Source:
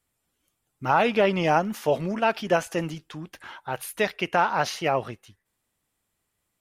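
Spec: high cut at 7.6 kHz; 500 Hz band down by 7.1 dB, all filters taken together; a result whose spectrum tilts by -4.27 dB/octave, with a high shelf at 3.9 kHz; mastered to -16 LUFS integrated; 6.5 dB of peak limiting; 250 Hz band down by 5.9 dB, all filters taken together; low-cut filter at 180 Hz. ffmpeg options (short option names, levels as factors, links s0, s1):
-af "highpass=180,lowpass=7600,equalizer=f=250:t=o:g=-3.5,equalizer=f=500:t=o:g=-8.5,highshelf=f=3900:g=-3,volume=5.62,alimiter=limit=0.794:level=0:latency=1"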